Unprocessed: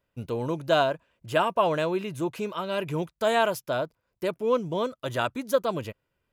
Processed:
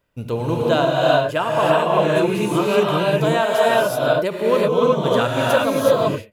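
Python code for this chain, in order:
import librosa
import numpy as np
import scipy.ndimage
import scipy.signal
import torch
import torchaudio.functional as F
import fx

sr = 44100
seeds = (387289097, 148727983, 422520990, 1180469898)

y = fx.rev_gated(x, sr, seeds[0], gate_ms=400, shape='rising', drr_db=-6.0)
y = fx.rider(y, sr, range_db=4, speed_s=0.5)
y = fx.end_taper(y, sr, db_per_s=210.0)
y = F.gain(torch.from_numpy(y), 2.5).numpy()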